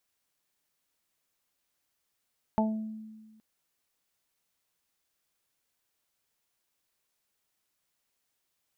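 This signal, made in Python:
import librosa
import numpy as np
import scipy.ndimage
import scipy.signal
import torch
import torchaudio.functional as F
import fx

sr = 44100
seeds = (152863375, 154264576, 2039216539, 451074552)

y = fx.additive(sr, length_s=0.82, hz=218.0, level_db=-23.5, upper_db=(-11.0, -3.0, 0.5), decay_s=1.5, upper_decays_s=(0.39, 0.45, 0.21))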